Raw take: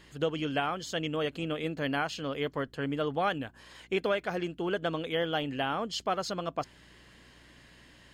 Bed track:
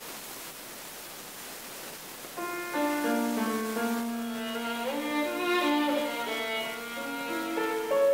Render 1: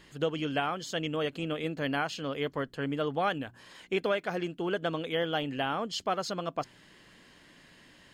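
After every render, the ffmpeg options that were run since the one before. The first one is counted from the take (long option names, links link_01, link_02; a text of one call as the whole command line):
ffmpeg -i in.wav -af "bandreject=frequency=60:width_type=h:width=4,bandreject=frequency=120:width_type=h:width=4" out.wav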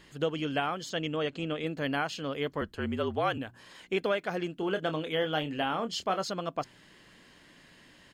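ffmpeg -i in.wav -filter_complex "[0:a]asplit=3[link_01][link_02][link_03];[link_01]afade=type=out:start_time=0.89:duration=0.02[link_04];[link_02]lowpass=frequency=7900:width=0.5412,lowpass=frequency=7900:width=1.3066,afade=type=in:start_time=0.89:duration=0.02,afade=type=out:start_time=1.65:duration=0.02[link_05];[link_03]afade=type=in:start_time=1.65:duration=0.02[link_06];[link_04][link_05][link_06]amix=inputs=3:normalize=0,asettb=1/sr,asplit=3[link_07][link_08][link_09];[link_07]atrim=end=2.614[link_10];[link_08]atrim=start=2.61:end=3.38,asetpts=PTS-STARTPTS,afade=type=in:duration=0.004:curve=qsin,afade=type=out:start_time=0.766:duration=0.004:curve=qsin,afreqshift=-49[link_11];[link_09]atrim=start=3.376[link_12];[link_10][link_11]acrossfade=duration=0.004:curve1=hsin:curve2=qsin[link_13];[link_13][link_12]acrossfade=duration=0.004:curve1=qsin:curve2=hsin,asplit=3[link_14][link_15][link_16];[link_14]afade=type=out:start_time=4.56:duration=0.02[link_17];[link_15]asplit=2[link_18][link_19];[link_19]adelay=26,volume=-9dB[link_20];[link_18][link_20]amix=inputs=2:normalize=0,afade=type=in:start_time=4.56:duration=0.02,afade=type=out:start_time=6.22:duration=0.02[link_21];[link_16]afade=type=in:start_time=6.22:duration=0.02[link_22];[link_17][link_21][link_22]amix=inputs=3:normalize=0" out.wav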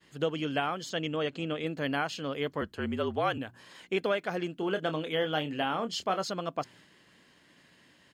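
ffmpeg -i in.wav -af "agate=range=-33dB:threshold=-52dB:ratio=3:detection=peak,highpass=77" out.wav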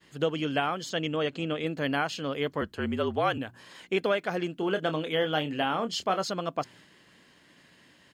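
ffmpeg -i in.wav -af "volume=2.5dB" out.wav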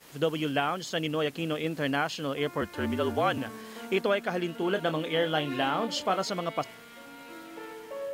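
ffmpeg -i in.wav -i bed.wav -filter_complex "[1:a]volume=-12.5dB[link_01];[0:a][link_01]amix=inputs=2:normalize=0" out.wav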